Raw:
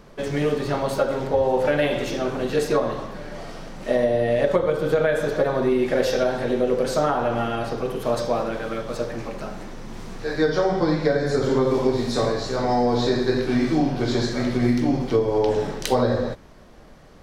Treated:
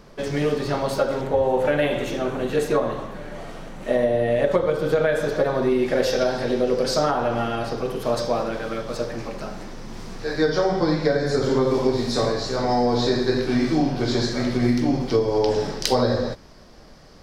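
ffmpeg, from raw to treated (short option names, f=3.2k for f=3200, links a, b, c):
-af "asetnsamples=n=441:p=0,asendcmd='1.21 equalizer g -6.5;4.52 equalizer g 3.5;6.21 equalizer g 11.5;7.11 equalizer g 5;15.09 equalizer g 11.5',equalizer=f=5k:t=o:w=0.49:g=4.5"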